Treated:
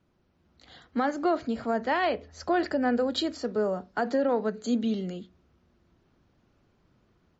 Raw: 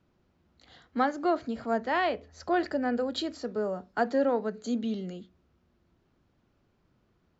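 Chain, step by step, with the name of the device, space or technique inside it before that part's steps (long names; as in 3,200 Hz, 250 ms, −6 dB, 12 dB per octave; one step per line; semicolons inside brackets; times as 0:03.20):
low-bitrate web radio (automatic gain control gain up to 4 dB; brickwall limiter −17 dBFS, peak gain reduction 6.5 dB; MP3 40 kbit/s 48,000 Hz)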